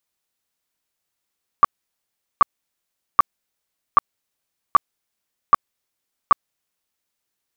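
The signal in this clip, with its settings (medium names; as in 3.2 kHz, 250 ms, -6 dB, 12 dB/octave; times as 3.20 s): tone bursts 1.16 kHz, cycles 18, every 0.78 s, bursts 7, -6 dBFS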